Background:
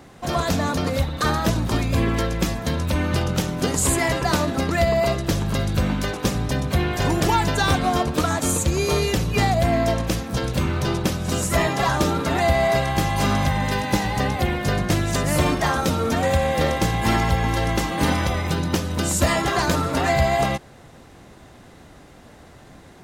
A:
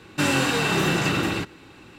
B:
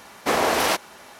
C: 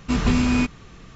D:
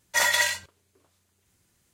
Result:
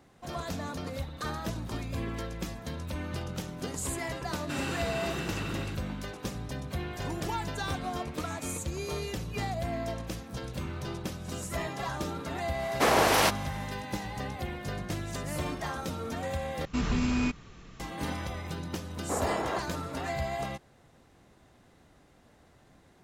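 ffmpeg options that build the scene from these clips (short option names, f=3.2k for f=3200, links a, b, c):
-filter_complex "[3:a]asplit=2[a][b];[2:a]asplit=2[c][d];[0:a]volume=-14dB[e];[a]bandpass=f=2.2k:t=q:w=4.9:csg=0[f];[b]alimiter=limit=-14dB:level=0:latency=1:release=63[g];[d]lowpass=1.1k[h];[e]asplit=2[i][j];[i]atrim=end=16.654[k];[g]atrim=end=1.15,asetpts=PTS-STARTPTS,volume=-5.5dB[l];[j]atrim=start=17.796[m];[1:a]atrim=end=1.98,asetpts=PTS-STARTPTS,volume=-13.5dB,afade=t=in:d=0.004:c=hsin,afade=t=out:st=1.976:d=0.004:c=hsin,adelay=4310[n];[f]atrim=end=1.15,asetpts=PTS-STARTPTS,volume=-15.5dB,afade=t=in:d=0.004:c=hsin,afade=t=out:st=1.146:d=0.004:c=hsin,adelay=7920[o];[c]atrim=end=1.19,asetpts=PTS-STARTPTS,volume=-2.5dB,afade=t=in:d=0.1,afade=t=out:st=1.09:d=0.1,adelay=12540[p];[h]atrim=end=1.19,asetpts=PTS-STARTPTS,volume=-9dB,afade=t=in:d=0.004:c=hsin,afade=t=out:st=1.186:d=0.004:c=hsin,adelay=18830[q];[k][l]acrossfade=d=0.004:c1=hsin:c2=hsin[r];[r][m]acrossfade=d=0.004:c1=hsin:c2=hsin[s];[s][n][o][p][q]amix=inputs=5:normalize=0"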